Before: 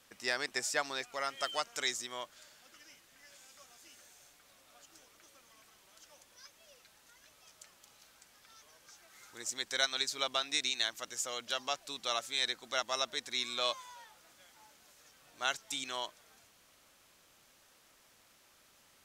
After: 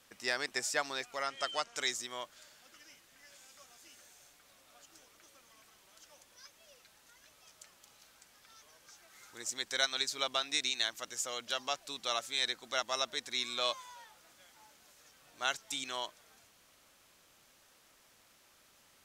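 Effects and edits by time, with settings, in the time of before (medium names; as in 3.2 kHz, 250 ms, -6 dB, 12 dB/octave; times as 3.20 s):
1.23–1.77 s: low-pass 8.5 kHz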